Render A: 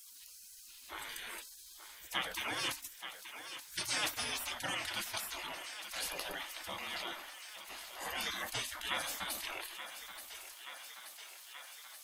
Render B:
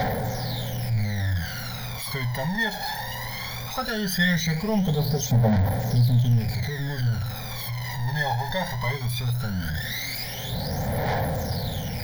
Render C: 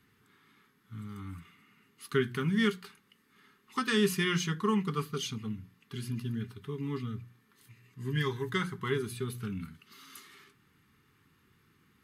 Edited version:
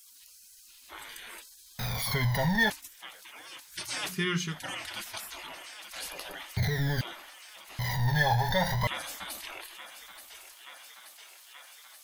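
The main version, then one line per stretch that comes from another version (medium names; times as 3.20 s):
A
1.79–2.70 s: from B
4.13–4.53 s: from C, crossfade 0.16 s
6.57–7.01 s: from B
7.79–8.87 s: from B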